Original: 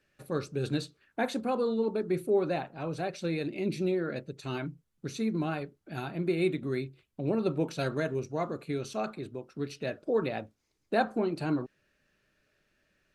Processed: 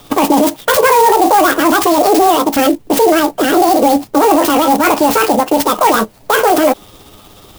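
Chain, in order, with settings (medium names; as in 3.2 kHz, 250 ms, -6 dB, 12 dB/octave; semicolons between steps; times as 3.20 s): rotating-head pitch shifter +3 st; bass shelf 340 Hz +5.5 dB; in parallel at +0.5 dB: compressor with a negative ratio -34 dBFS; on the sum: speed mistake 45 rpm record played at 78 rpm; loudness maximiser +25 dB; sampling jitter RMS 0.039 ms; trim -1 dB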